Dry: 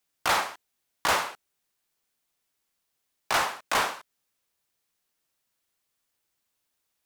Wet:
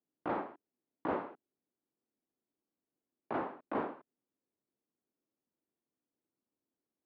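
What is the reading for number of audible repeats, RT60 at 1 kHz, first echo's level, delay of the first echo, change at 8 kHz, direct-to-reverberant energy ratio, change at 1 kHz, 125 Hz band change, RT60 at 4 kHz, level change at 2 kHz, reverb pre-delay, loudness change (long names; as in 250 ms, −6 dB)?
no echo audible, no reverb audible, no echo audible, no echo audible, below −40 dB, no reverb audible, −12.0 dB, −5.0 dB, no reverb audible, −19.5 dB, no reverb audible, −12.0 dB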